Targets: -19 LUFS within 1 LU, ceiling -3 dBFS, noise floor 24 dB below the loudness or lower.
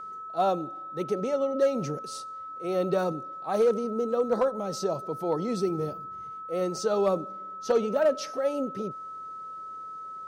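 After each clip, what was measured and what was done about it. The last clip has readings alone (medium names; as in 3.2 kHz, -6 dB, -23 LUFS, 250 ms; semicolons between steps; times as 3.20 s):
steady tone 1.3 kHz; tone level -37 dBFS; loudness -28.5 LUFS; peak level -15.0 dBFS; loudness target -19.0 LUFS
-> band-stop 1.3 kHz, Q 30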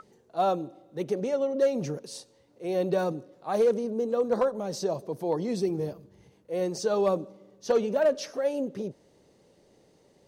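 steady tone not found; loudness -28.5 LUFS; peak level -15.0 dBFS; loudness target -19.0 LUFS
-> trim +9.5 dB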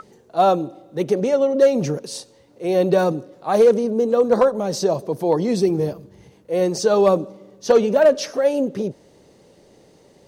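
loudness -19.0 LUFS; peak level -5.5 dBFS; noise floor -53 dBFS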